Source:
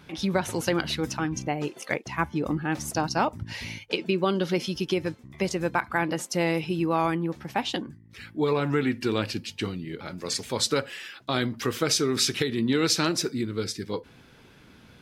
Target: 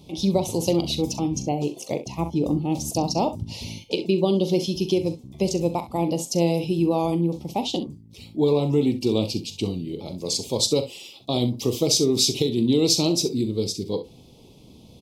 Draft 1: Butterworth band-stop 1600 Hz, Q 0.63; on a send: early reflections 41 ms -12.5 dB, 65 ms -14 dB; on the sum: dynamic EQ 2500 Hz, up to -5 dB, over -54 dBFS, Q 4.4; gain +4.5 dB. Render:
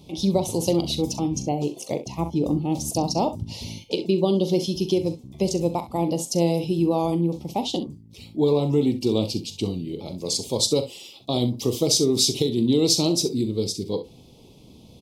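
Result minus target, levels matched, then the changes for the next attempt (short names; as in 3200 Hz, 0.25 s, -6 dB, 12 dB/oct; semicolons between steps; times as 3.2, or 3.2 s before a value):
2000 Hz band -3.5 dB
change: dynamic EQ 9400 Hz, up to -5 dB, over -54 dBFS, Q 4.4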